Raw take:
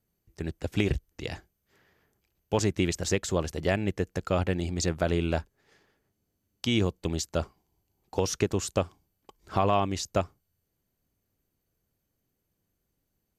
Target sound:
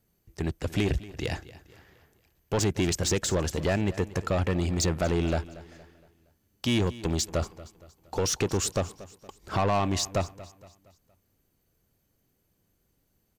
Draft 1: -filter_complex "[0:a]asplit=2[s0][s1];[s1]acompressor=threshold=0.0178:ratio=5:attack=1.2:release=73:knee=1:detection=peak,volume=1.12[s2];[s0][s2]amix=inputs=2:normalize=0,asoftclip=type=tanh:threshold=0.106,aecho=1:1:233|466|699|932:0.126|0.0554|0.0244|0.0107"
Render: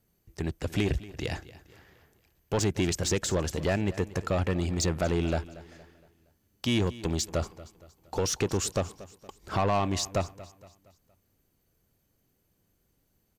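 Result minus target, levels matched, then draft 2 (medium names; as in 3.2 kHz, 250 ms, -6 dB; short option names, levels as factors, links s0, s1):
compression: peak gain reduction +7 dB
-filter_complex "[0:a]asplit=2[s0][s1];[s1]acompressor=threshold=0.0473:ratio=5:attack=1.2:release=73:knee=1:detection=peak,volume=1.12[s2];[s0][s2]amix=inputs=2:normalize=0,asoftclip=type=tanh:threshold=0.106,aecho=1:1:233|466|699|932:0.126|0.0554|0.0244|0.0107"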